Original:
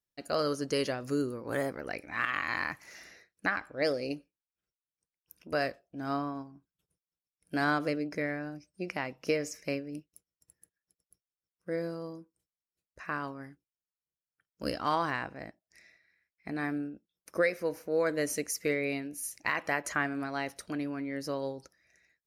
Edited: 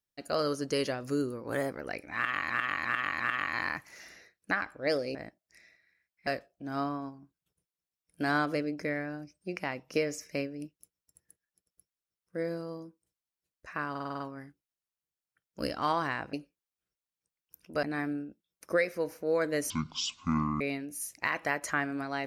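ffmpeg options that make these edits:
-filter_complex "[0:a]asplit=16[s0][s1][s2][s3][s4][s5][s6][s7][s8][s9][s10][s11][s12][s13][s14][s15];[s0]atrim=end=2.502[s16];[s1]atrim=start=2.148:end=2.502[s17];[s2]atrim=start=2.148:end=2.502[s18];[s3]atrim=start=2.148:end=4.102[s19];[s4]atrim=start=15.358:end=16.482[s20];[s5]atrim=start=5.598:end=13.282[s21];[s6]atrim=start=13.228:end=13.282[s22];[s7]atrim=start=13.228:end=13.282[s23];[s8]atrim=start=13.228:end=13.282[s24];[s9]atrim=start=13.228:end=13.282[s25];[s10]atrim=start=13.228:end=13.282[s26];[s11]atrim=start=13.228:end=15.362[s27];[s12]atrim=start=4.098:end=5.602[s28];[s13]atrim=start=16.478:end=18.354[s29];[s14]atrim=start=18.35:end=18.83,asetpts=PTS-STARTPTS,asetrate=23373,aresample=44100[s30];[s15]atrim=start=18.826[s31];[s16][s17]acrossfade=d=0.004:c1=hsin:c2=hsin[s32];[s32][s18]acrossfade=d=0.004:c1=hsin:c2=hsin[s33];[s33][s19]acrossfade=d=0.004:c1=hsin:c2=hsin[s34];[s34][s20]acrossfade=d=0.004:c1=hsin:c2=hsin[s35];[s35][s21]acrossfade=d=0.004:c1=hsin:c2=hsin[s36];[s36][s22]acrossfade=d=0.004:c1=hsin:c2=hsin[s37];[s37][s23]acrossfade=d=0.004:c1=hsin:c2=hsin[s38];[s38][s24]acrossfade=d=0.004:c1=hsin:c2=hsin[s39];[s39][s25]acrossfade=d=0.004:c1=hsin:c2=hsin[s40];[s40][s26]acrossfade=d=0.004:c1=hsin:c2=hsin[s41];[s41][s27]acrossfade=d=0.004:c1=hsin:c2=hsin[s42];[s42][s28]acrossfade=d=0.004:c1=hsin:c2=hsin[s43];[s43][s29]acrossfade=d=0.004:c1=hsin:c2=hsin[s44];[s44][s30]acrossfade=d=0.004:c1=hsin:c2=hsin[s45];[s45][s31]acrossfade=d=0.004:c1=hsin:c2=hsin"

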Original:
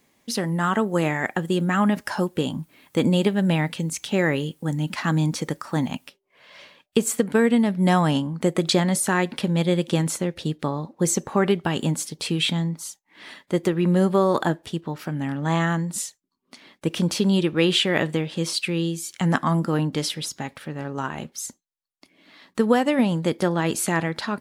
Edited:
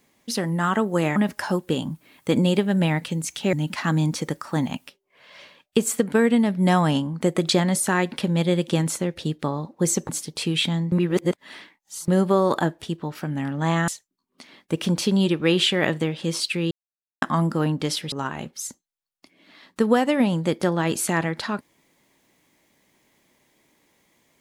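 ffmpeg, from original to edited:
-filter_complex "[0:a]asplit=10[s0][s1][s2][s3][s4][s5][s6][s7][s8][s9];[s0]atrim=end=1.162[s10];[s1]atrim=start=1.838:end=4.212[s11];[s2]atrim=start=4.728:end=11.292[s12];[s3]atrim=start=11.928:end=12.762[s13];[s4]atrim=start=12.758:end=13.922,asetpts=PTS-STARTPTS,areverse[s14];[s5]atrim=start=13.918:end=15.722[s15];[s6]atrim=start=16.008:end=18.84,asetpts=PTS-STARTPTS,afade=t=out:st=2.828:d=0.004:c=hsin[s16];[s7]atrim=start=18.84:end=19.35,asetpts=PTS-STARTPTS,volume=0[s17];[s8]atrim=start=19.35:end=20.252,asetpts=PTS-STARTPTS,afade=t=in:d=0.004:c=hsin[s18];[s9]atrim=start=20.908[s19];[s10][s11]acrossfade=d=0.004:c1=hsin:c2=hsin[s20];[s20][s12]acrossfade=d=0.004:c1=hsin:c2=hsin[s21];[s21][s13]acrossfade=d=0.004:c1=hsin:c2=hsin[s22];[s22][s14]acrossfade=d=0.004:c1=hsin:c2=hsin[s23];[s23][s15]acrossfade=d=0.004:c1=hsin:c2=hsin[s24];[s16][s17][s18]concat=n=3:v=0:a=1[s25];[s24][s25]acrossfade=d=0.004:c1=hsin:c2=hsin[s26];[s26][s19]acrossfade=d=0.004:c1=hsin:c2=hsin"

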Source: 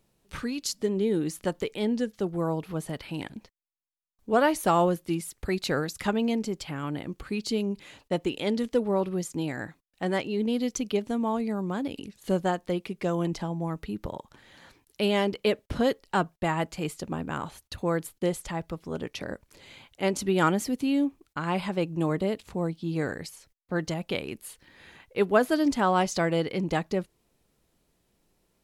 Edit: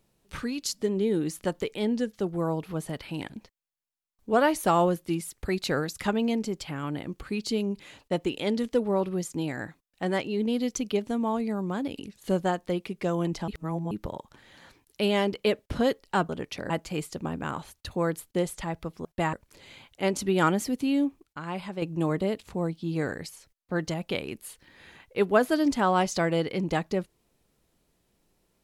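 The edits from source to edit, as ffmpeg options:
-filter_complex "[0:a]asplit=9[s0][s1][s2][s3][s4][s5][s6][s7][s8];[s0]atrim=end=13.482[s9];[s1]atrim=start=13.478:end=13.912,asetpts=PTS-STARTPTS,areverse[s10];[s2]atrim=start=13.908:end=16.292[s11];[s3]atrim=start=18.918:end=19.332[s12];[s4]atrim=start=16.568:end=18.922[s13];[s5]atrim=start=16.288:end=16.572[s14];[s6]atrim=start=19.328:end=21.232[s15];[s7]atrim=start=21.228:end=21.822,asetpts=PTS-STARTPTS,volume=0.501[s16];[s8]atrim=start=21.818[s17];[s9][s10]acrossfade=d=0.004:c1=hsin:c2=hsin[s18];[s18][s11]acrossfade=d=0.004:c1=hsin:c2=hsin[s19];[s19][s12]acrossfade=d=0.004:c1=hsin:c2=hsin[s20];[s20][s13]acrossfade=d=0.004:c1=hsin:c2=hsin[s21];[s21][s14]acrossfade=d=0.004:c1=hsin:c2=hsin[s22];[s22][s15]acrossfade=d=0.004:c1=hsin:c2=hsin[s23];[s23][s16]acrossfade=d=0.004:c1=hsin:c2=hsin[s24];[s24][s17]acrossfade=d=0.004:c1=hsin:c2=hsin"

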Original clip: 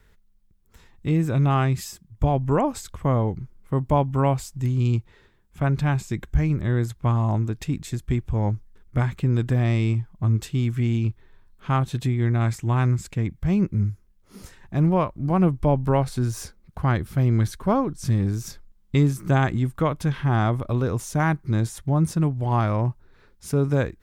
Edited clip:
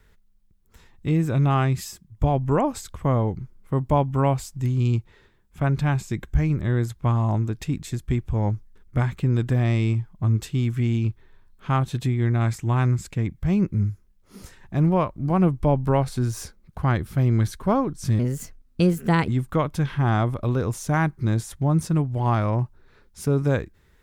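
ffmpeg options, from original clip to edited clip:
-filter_complex "[0:a]asplit=3[s0][s1][s2];[s0]atrim=end=18.194[s3];[s1]atrim=start=18.19:end=19.54,asetpts=PTS-STARTPTS,asetrate=54684,aresample=44100,atrim=end_sample=48012,asetpts=PTS-STARTPTS[s4];[s2]atrim=start=19.536[s5];[s3][s4]acrossfade=d=0.004:c1=hsin:c2=hsin[s6];[s6][s5]acrossfade=d=0.004:c1=hsin:c2=hsin"

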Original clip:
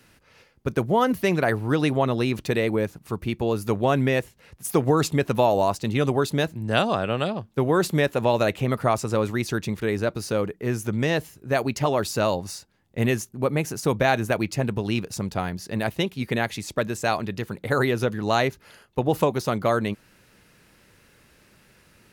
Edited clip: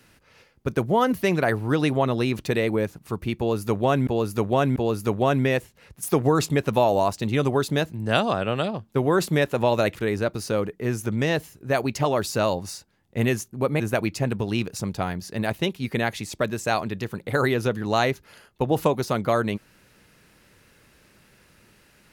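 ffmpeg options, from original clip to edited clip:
-filter_complex "[0:a]asplit=5[s0][s1][s2][s3][s4];[s0]atrim=end=4.072[s5];[s1]atrim=start=3.378:end=4.072[s6];[s2]atrim=start=3.378:end=8.572[s7];[s3]atrim=start=9.758:end=13.612[s8];[s4]atrim=start=14.168[s9];[s5][s6]acrossfade=d=0.004:c1=hsin:c2=hsin[s10];[s10][s7]acrossfade=d=0.004:c1=hsin:c2=hsin[s11];[s11][s8]acrossfade=d=0.004:c1=hsin:c2=hsin[s12];[s12][s9]acrossfade=d=0.004:c1=hsin:c2=hsin"

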